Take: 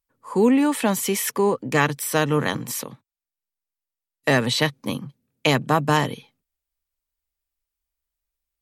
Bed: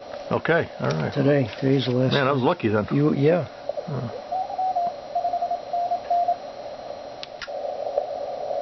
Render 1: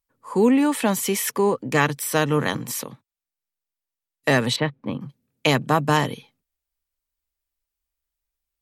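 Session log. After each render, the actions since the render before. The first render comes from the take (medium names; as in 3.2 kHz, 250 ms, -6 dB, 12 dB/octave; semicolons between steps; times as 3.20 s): 4.56–5.01 s: distance through air 500 m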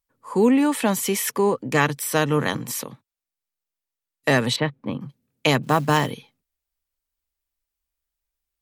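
5.63–6.11 s: companded quantiser 6-bit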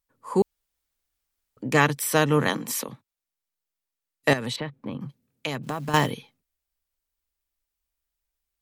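0.42–1.57 s: room tone; 2.49–2.89 s: high-pass 180 Hz 24 dB/octave; 4.33–5.94 s: compression 3:1, threshold -29 dBFS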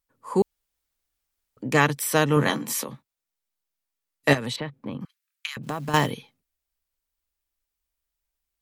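2.35–4.38 s: doubling 14 ms -6 dB; 5.05–5.57 s: steep high-pass 1.3 kHz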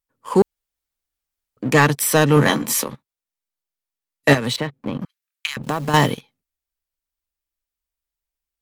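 waveshaping leveller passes 2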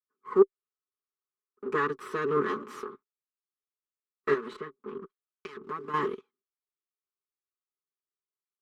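comb filter that takes the minimum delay 4.7 ms; two resonant band-passes 680 Hz, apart 1.6 oct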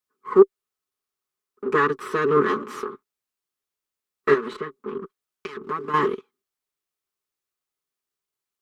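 trim +8 dB; peak limiter -3 dBFS, peak gain reduction 2.5 dB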